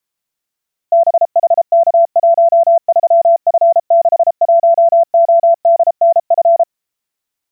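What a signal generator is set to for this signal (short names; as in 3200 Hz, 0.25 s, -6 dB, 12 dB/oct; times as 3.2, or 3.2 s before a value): Morse "BHK13F61ODNF" 33 wpm 675 Hz -5 dBFS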